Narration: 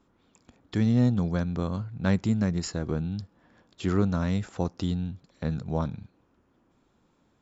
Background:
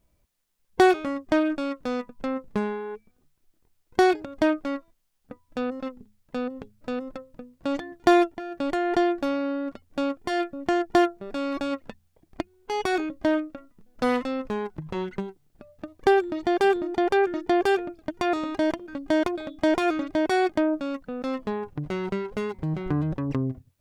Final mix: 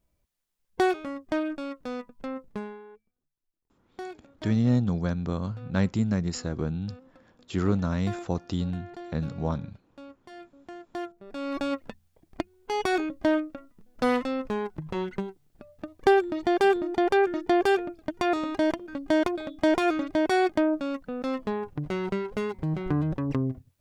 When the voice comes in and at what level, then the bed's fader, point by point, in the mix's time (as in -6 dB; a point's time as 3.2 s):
3.70 s, -0.5 dB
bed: 2.43 s -6 dB
3.23 s -19.5 dB
10.82 s -19.5 dB
11.6 s -0.5 dB